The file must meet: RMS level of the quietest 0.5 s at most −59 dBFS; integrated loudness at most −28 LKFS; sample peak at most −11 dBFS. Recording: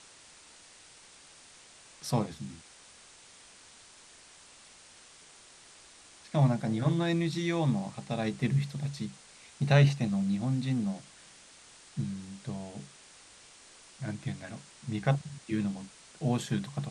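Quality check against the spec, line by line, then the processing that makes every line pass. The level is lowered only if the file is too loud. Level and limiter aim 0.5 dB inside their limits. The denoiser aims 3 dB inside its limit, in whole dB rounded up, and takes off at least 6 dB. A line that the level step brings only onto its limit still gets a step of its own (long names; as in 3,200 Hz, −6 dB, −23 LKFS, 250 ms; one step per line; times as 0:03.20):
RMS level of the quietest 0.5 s −55 dBFS: out of spec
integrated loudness −31.5 LKFS: in spec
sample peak −10.0 dBFS: out of spec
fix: broadband denoise 7 dB, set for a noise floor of −55 dBFS
brickwall limiter −11.5 dBFS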